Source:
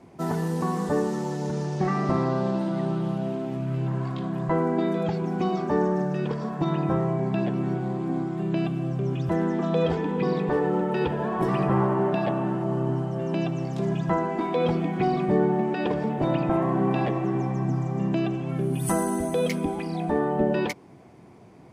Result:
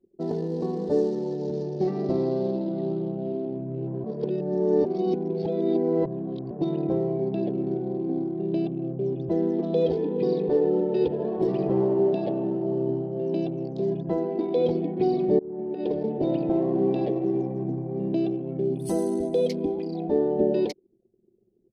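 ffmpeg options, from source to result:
-filter_complex "[0:a]asplit=4[a][b][c][d];[a]atrim=end=4.042[e];[b]atrim=start=4.038:end=6.512,asetpts=PTS-STARTPTS,areverse[f];[c]atrim=start=6.508:end=15.39,asetpts=PTS-STARTPTS,afade=t=out:st=8.878:d=0.004:c=hsin:silence=0.0668344[g];[d]atrim=start=15.39,asetpts=PTS-STARTPTS,afade=t=in:d=0.64:silence=0.0668344[h];[e][f]acrossfade=d=0.004:c1=hsin:c2=hsin[i];[g][h]concat=n=2:v=0:a=1[j];[i][j]acrossfade=d=0.004:c1=hsin:c2=hsin,firequalizer=gain_entry='entry(120,0);entry(400,13);entry(1200,-13);entry(4300,14);entry(7100,6)':delay=0.05:min_phase=1,anlmdn=100,aemphasis=mode=reproduction:type=cd,volume=-8dB"

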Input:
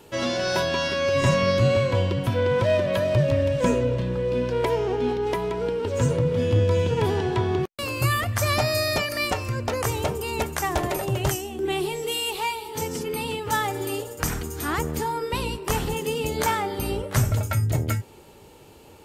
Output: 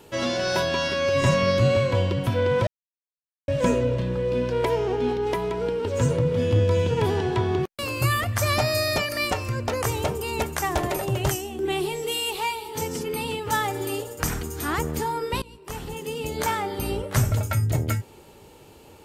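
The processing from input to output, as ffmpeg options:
-filter_complex "[0:a]asplit=4[a][b][c][d];[a]atrim=end=2.67,asetpts=PTS-STARTPTS,afade=t=out:st=2.666:d=0.004:c=hsin[e];[b]atrim=start=2.67:end=3.48,asetpts=PTS-STARTPTS,volume=0[f];[c]atrim=start=3.48:end=15.42,asetpts=PTS-STARTPTS,afade=t=in:d=0.004:c=hsin,afade=t=out:st=11.936:d=0.004:c=hsin:silence=0.0749894[g];[d]atrim=start=15.42,asetpts=PTS-STARTPTS,afade=t=in:d=1.84:c=qsin:silence=0.0749894[h];[e][f][g][h]concat=n=4:v=0:a=1"

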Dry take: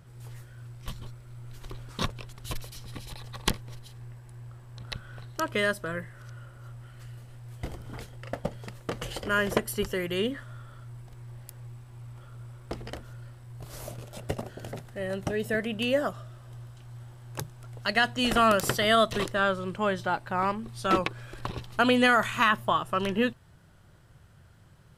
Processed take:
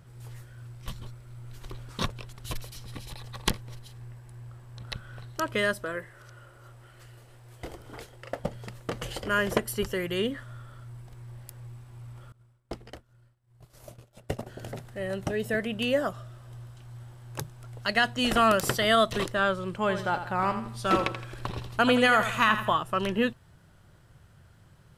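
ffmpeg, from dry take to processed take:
-filter_complex "[0:a]asettb=1/sr,asplit=3[a][b][c];[a]atrim=end=5.844[d];[b]atrim=start=5.84:end=8.4,asetpts=PTS-STARTPTS,afade=t=in:d=0.004:c=qsin,afade=t=out:st=2.556:d=0.004:c=qsin,lowshelf=f=270:t=q:w=1.5:g=-6.5[e];[c]atrim=start=8.396[f];[d][e]acrossfade=d=0.004:c1=hsin:c2=qsin[g];[g][f]acrossfade=d=0.004:c1=qsin:c2=hsin,asettb=1/sr,asplit=3[h][i][j];[h]atrim=end=12.324[k];[i]atrim=start=12.32:end=14.47,asetpts=PTS-STARTPTS,afade=t=in:d=0.004:c=qsin,afade=t=out:st=2.146:d=0.004:c=qsin,agate=range=-33dB:threshold=-33dB:ratio=3:release=100:detection=peak[l];[j]atrim=start=14.466[m];[k][l]acrossfade=d=0.004:c1=hsin:c2=qsin[n];[n][m]acrossfade=d=0.004:c1=qsin:c2=hsin,asettb=1/sr,asplit=3[o][p][q];[o]atrim=end=19.754[r];[p]atrim=start=19.75:end=22.75,asetpts=PTS-STARTPTS,afade=t=in:d=0.004:c=qsin,afade=t=out:st=2.996:d=0.004:c=qsin,aecho=1:1:83|166|249|332:0.316|0.123|0.0481|0.0188,atrim=end_sample=132300[s];[q]atrim=start=22.746[t];[r][s]acrossfade=d=0.004:c1=hsin:c2=qsin[u];[u][t]acrossfade=d=0.004:c1=qsin:c2=hsin"

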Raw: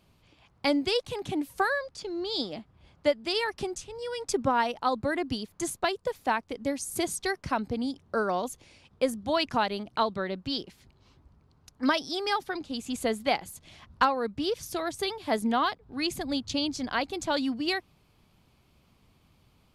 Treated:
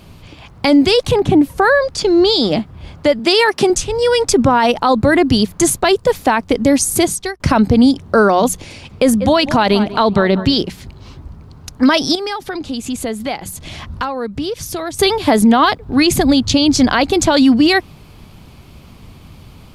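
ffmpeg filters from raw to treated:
-filter_complex "[0:a]asettb=1/sr,asplit=3[a][b][c];[a]atrim=end=1.114[d];[b]atrim=start=1.11:end=1.82,asetpts=PTS-STARTPTS,afade=t=in:d=0.004:c=qsin,afade=t=out:st=0.706:d=0.004:c=qsin,highshelf=f=2k:g=-11.5[e];[c]atrim=start=1.816[f];[d][e]acrossfade=d=0.004:c1=hsin:c2=qsin[g];[g][f]acrossfade=d=0.004:c1=qsin:c2=hsin,asettb=1/sr,asplit=3[h][i][j];[h]atrim=end=3.194[k];[i]atrim=start=3.19:end=3.7,asetpts=PTS-STARTPTS,afade=t=in:d=0.004:c=qsin,afade=t=out:st=0.506:d=0.004:c=qsin,highpass=200[l];[j]atrim=start=3.696[m];[k][l]acrossfade=d=0.004:c1=hsin:c2=qsin[n];[n][m]acrossfade=d=0.004:c1=qsin:c2=hsin,asettb=1/sr,asplit=3[o][p][q];[o]atrim=end=8.514[r];[p]atrim=start=8.51:end=10.55,asetpts=PTS-STARTPTS,afade=t=in:d=0.004:c=qsin,afade=t=out:st=2.036:d=0.004:c=qsin,asplit=2[s][t];[t]adelay=191,lowpass=f=2.5k:p=1,volume=-18dB,asplit=2[u][v];[v]adelay=191,lowpass=f=2.5k:p=1,volume=0.39,asplit=2[w][x];[x]adelay=191,lowpass=f=2.5k:p=1,volume=0.39[y];[s][u][w][y]amix=inputs=4:normalize=0,atrim=end_sample=89964[z];[q]atrim=start=10.546[aa];[r][z]acrossfade=d=0.004:c1=hsin:c2=qsin[ab];[ab][aa]acrossfade=d=0.004:c1=qsin:c2=hsin,asettb=1/sr,asplit=3[ac][ad][ae];[ac]atrim=end=12.154[af];[ad]atrim=start=12.15:end=14.99,asetpts=PTS-STARTPTS,afade=t=in:d=0.004:c=qsin,afade=t=out:st=2.836:d=0.004:c=qsin,acompressor=threshold=-48dB:ratio=2.5:attack=3.2:release=140:knee=1:detection=peak[ag];[ae]atrim=start=14.986[ah];[af][ag]acrossfade=d=0.004:c1=hsin:c2=qsin[ai];[ai][ah]acrossfade=d=0.004:c1=qsin:c2=hsin,asplit=2[aj][ak];[aj]atrim=end=7.4,asetpts=PTS-STARTPTS,afade=t=out:st=6.76:d=0.64[al];[ak]atrim=start=7.4,asetpts=PTS-STARTPTS,afade=t=in:d=0.004:c=hsin[am];[al][am]concat=n=2:v=0:a=1,lowshelf=f=240:g=6,bandreject=f=60:t=h:w=6,bandreject=f=120:t=h:w=6,bandreject=f=180:t=h:w=6,alimiter=level_in=23dB:limit=-1dB:release=50:level=0:latency=1,volume=-2.5dB"

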